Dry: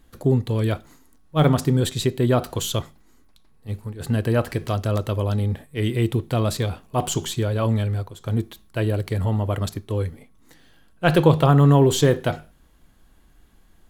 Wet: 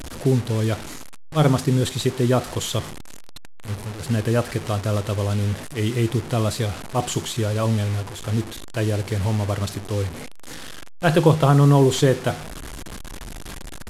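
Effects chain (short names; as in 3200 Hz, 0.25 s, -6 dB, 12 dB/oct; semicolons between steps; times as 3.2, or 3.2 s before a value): delta modulation 64 kbps, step -28 dBFS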